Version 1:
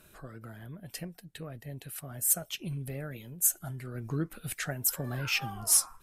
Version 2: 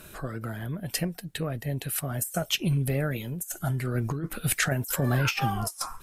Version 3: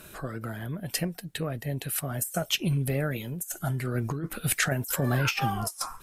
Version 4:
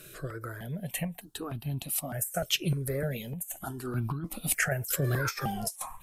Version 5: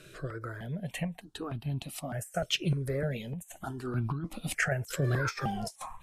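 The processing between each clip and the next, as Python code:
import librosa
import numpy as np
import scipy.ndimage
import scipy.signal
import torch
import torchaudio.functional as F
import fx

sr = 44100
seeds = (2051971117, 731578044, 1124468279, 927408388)

y1 = fx.over_compress(x, sr, threshold_db=-34.0, ratio=-0.5)
y1 = y1 * librosa.db_to_amplitude(8.0)
y2 = fx.low_shelf(y1, sr, hz=82.0, db=-5.0)
y3 = fx.phaser_held(y2, sr, hz=3.3, low_hz=230.0, high_hz=1900.0)
y4 = fx.air_absorb(y3, sr, metres=72.0)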